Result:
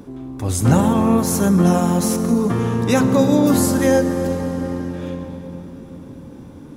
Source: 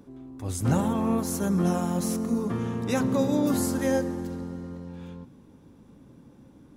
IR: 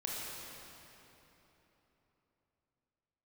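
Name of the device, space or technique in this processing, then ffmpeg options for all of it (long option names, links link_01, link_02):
ducked reverb: -filter_complex "[0:a]asplit=3[link_01][link_02][link_03];[1:a]atrim=start_sample=2205[link_04];[link_02][link_04]afir=irnorm=-1:irlink=0[link_05];[link_03]apad=whole_len=298445[link_06];[link_05][link_06]sidechaincompress=threshold=-36dB:ratio=8:attack=49:release=134,volume=-2.5dB[link_07];[link_01][link_07]amix=inputs=2:normalize=0,volume=8.5dB"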